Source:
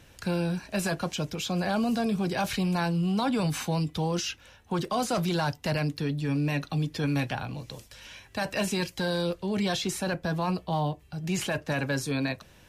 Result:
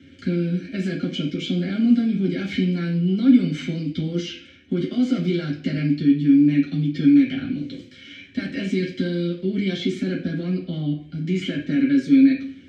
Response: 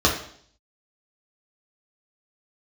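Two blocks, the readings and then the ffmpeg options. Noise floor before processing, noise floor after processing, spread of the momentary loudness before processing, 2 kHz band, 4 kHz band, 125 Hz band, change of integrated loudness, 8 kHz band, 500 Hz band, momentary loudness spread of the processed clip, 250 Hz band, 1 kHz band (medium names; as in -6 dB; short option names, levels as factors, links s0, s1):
-56 dBFS, -47 dBFS, 7 LU, -0.5 dB, +1.0 dB, +4.0 dB, +7.5 dB, under -10 dB, +1.0 dB, 12 LU, +11.5 dB, under -10 dB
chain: -filter_complex "[0:a]acompressor=threshold=0.0282:ratio=2,asplit=3[s0][s1][s2];[s0]bandpass=f=270:t=q:w=8,volume=1[s3];[s1]bandpass=f=2290:t=q:w=8,volume=0.501[s4];[s2]bandpass=f=3010:t=q:w=8,volume=0.355[s5];[s3][s4][s5]amix=inputs=3:normalize=0[s6];[1:a]atrim=start_sample=2205,asetrate=52920,aresample=44100[s7];[s6][s7]afir=irnorm=-1:irlink=0,volume=1.41"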